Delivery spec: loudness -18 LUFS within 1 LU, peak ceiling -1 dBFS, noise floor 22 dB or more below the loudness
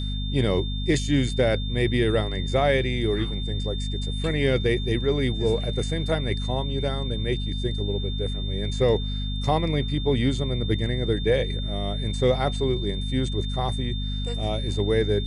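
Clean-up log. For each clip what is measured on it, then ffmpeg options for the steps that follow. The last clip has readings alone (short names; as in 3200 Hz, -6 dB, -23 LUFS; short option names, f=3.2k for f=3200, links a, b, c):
hum 50 Hz; harmonics up to 250 Hz; hum level -26 dBFS; steady tone 3600 Hz; tone level -35 dBFS; loudness -25.0 LUFS; peak -9.0 dBFS; loudness target -18.0 LUFS
-> -af "bandreject=f=50:t=h:w=6,bandreject=f=100:t=h:w=6,bandreject=f=150:t=h:w=6,bandreject=f=200:t=h:w=6,bandreject=f=250:t=h:w=6"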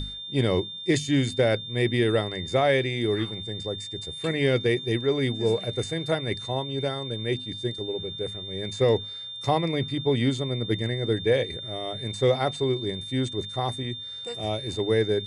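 hum none; steady tone 3600 Hz; tone level -35 dBFS
-> -af "bandreject=f=3.6k:w=30"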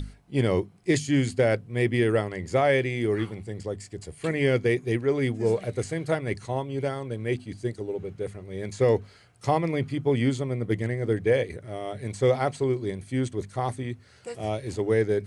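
steady tone none; loudness -27.0 LUFS; peak -10.5 dBFS; loudness target -18.0 LUFS
-> -af "volume=9dB"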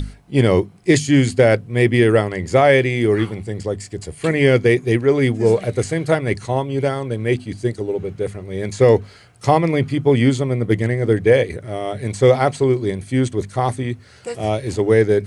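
loudness -18.0 LUFS; peak -1.5 dBFS; noise floor -45 dBFS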